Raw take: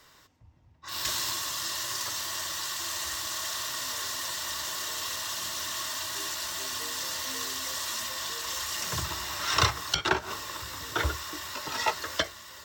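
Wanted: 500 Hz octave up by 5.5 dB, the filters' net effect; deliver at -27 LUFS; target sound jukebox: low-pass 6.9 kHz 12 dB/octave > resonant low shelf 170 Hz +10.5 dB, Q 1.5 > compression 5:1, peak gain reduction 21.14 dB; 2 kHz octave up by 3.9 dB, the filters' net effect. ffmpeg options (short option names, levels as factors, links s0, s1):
-af "lowpass=6900,lowshelf=f=170:t=q:w=1.5:g=10.5,equalizer=f=500:t=o:g=8.5,equalizer=f=2000:t=o:g=4.5,acompressor=threshold=0.02:ratio=5,volume=2.82"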